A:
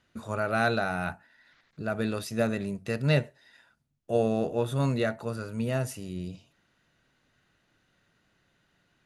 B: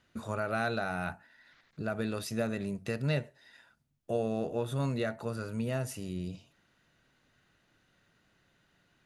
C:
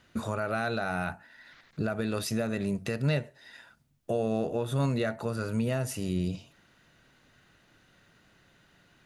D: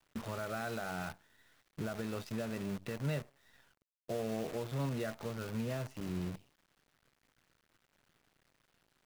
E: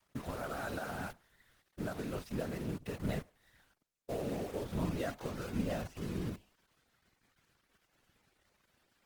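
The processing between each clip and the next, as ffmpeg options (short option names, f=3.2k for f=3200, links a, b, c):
-af "acompressor=threshold=-32dB:ratio=2"
-af "alimiter=level_in=2.5dB:limit=-24dB:level=0:latency=1:release=332,volume=-2.5dB,volume=7.5dB"
-af "adynamicsmooth=sensitivity=1.5:basefreq=3.3k,acrusher=bits=7:dc=4:mix=0:aa=0.000001,volume=-8.5dB"
-af "afftfilt=real='hypot(re,im)*cos(2*PI*random(0))':imag='hypot(re,im)*sin(2*PI*random(1))':win_size=512:overlap=0.75,volume=6.5dB" -ar 48000 -c:a libopus -b:a 20k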